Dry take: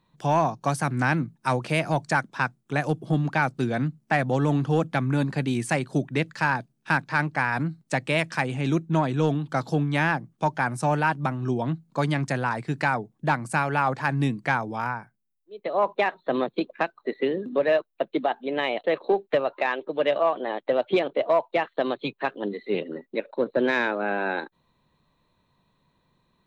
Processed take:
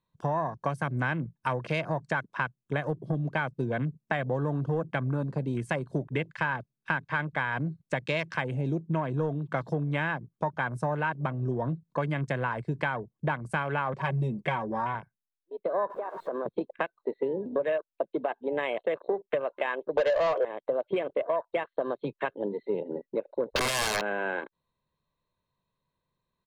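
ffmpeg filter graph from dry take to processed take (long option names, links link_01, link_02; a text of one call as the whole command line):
ffmpeg -i in.wav -filter_complex "[0:a]asettb=1/sr,asplit=3[link_01][link_02][link_03];[link_01]atrim=end=13.934[link_04];[link_02]atrim=start=13.93:end=14.95,asetpts=PTS-STARTPTS,afade=type=in:duration=0.004:curve=qsin,afade=type=out:start_time=1.016:duration=0.004:curve=qsin,equalizer=frequency=1500:width=3.3:gain=-10.5,aecho=1:1:5.3:0.84,atrim=end_sample=44982[link_05];[link_03]atrim=start=14.946[link_06];[link_04][link_05]acrossfade=duration=0.004:curve1=hsin:curve2=qsin[link_07];[link_07][link_06]acrossfade=duration=0.004:curve1=qsin:curve2=hsin,asettb=1/sr,asplit=3[link_08][link_09][link_10];[link_08]atrim=end=15.904[link_11];[link_09]atrim=start=15.9:end=16.46,asetpts=PTS-STARTPTS,afade=type=in:duration=0.004:curve=qsin,afade=type=out:start_time=0.556:duration=0.004:curve=qsin,aeval=exprs='val(0)+0.5*0.0251*sgn(val(0))':channel_layout=same,acrossover=split=260 2300:gain=0.224 1 0.224[link_12][link_13][link_14];[link_12][link_13][link_14]amix=inputs=3:normalize=0,acompressor=threshold=-30dB:ratio=6:attack=3.2:release=140:knee=1:detection=peak[link_15];[link_10]atrim=start=16.456[link_16];[link_11][link_15]acrossfade=duration=0.004:curve1=hsin:curve2=qsin[link_17];[link_17][link_16]acrossfade=duration=0.004:curve1=qsin:curve2=hsin,asettb=1/sr,asplit=3[link_18][link_19][link_20];[link_18]atrim=end=19.974[link_21];[link_19]atrim=start=19.97:end=20.45,asetpts=PTS-STARTPTS,afade=type=in:duration=0.004:curve=qsin,afade=type=out:start_time=0.476:duration=0.004:curve=qsin,highpass=frequency=490:width_type=q:width=3.4,asplit=2[link_22][link_23];[link_23]highpass=frequency=720:poles=1,volume=23dB,asoftclip=type=tanh:threshold=-5dB[link_24];[link_22][link_24]amix=inputs=2:normalize=0,lowpass=frequency=2900:poles=1,volume=-6dB[link_25];[link_20]atrim=start=20.446[link_26];[link_21][link_25]acrossfade=duration=0.004:curve1=hsin:curve2=qsin[link_27];[link_27][link_26]acrossfade=duration=0.004:curve1=qsin:curve2=hsin,asettb=1/sr,asplit=3[link_28][link_29][link_30];[link_28]atrim=end=23.524[link_31];[link_29]atrim=start=23.52:end=24.01,asetpts=PTS-STARTPTS,afade=type=in:duration=0.004:curve=qsin,afade=type=out:start_time=0.486:duration=0.004:curve=qsin,lowpass=frequency=1300:poles=1,equalizer=frequency=900:width_type=o:width=2.2:gain=13.5,aeval=exprs='(mod(5.31*val(0)+1,2)-1)/5.31':channel_layout=same[link_32];[link_30]atrim=start=24.006[link_33];[link_31][link_32]acrossfade=duration=0.004:curve1=hsin:curve2=qsin[link_34];[link_34][link_33]acrossfade=duration=0.004:curve1=qsin:curve2=hsin,afwtdn=0.02,aecho=1:1:1.9:0.34,acompressor=threshold=-28dB:ratio=4,volume=1.5dB" out.wav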